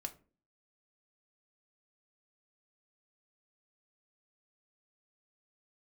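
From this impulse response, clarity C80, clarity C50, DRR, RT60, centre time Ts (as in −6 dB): 22.0 dB, 16.5 dB, 4.5 dB, 0.40 s, 6 ms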